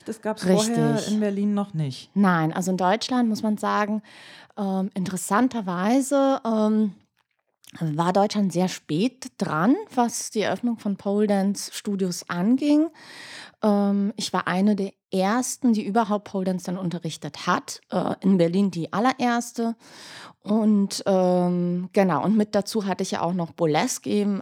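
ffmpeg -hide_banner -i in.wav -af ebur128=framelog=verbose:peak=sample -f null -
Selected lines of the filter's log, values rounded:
Integrated loudness:
  I:         -23.6 LUFS
  Threshold: -33.9 LUFS
Loudness range:
  LRA:         1.8 LU
  Threshold: -44.0 LUFS
  LRA low:   -24.7 LUFS
  LRA high:  -22.9 LUFS
Sample peak:
  Peak:       -5.6 dBFS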